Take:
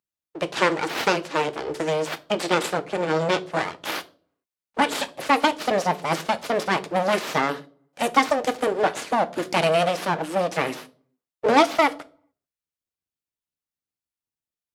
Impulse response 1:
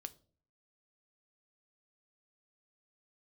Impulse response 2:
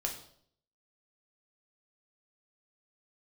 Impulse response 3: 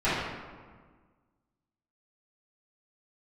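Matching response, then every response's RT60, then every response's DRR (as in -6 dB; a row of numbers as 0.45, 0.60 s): 1; 0.45, 0.65, 1.6 s; 10.0, 0.5, -15.5 dB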